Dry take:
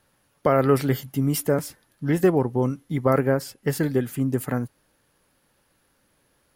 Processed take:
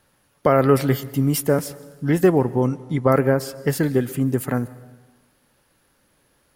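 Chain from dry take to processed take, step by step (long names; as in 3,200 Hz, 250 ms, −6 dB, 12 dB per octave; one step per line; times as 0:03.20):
0:02.66–0:03.10: low-pass filter 10,000 Hz 24 dB per octave
dense smooth reverb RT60 1.3 s, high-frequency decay 0.85×, pre-delay 115 ms, DRR 18.5 dB
level +3 dB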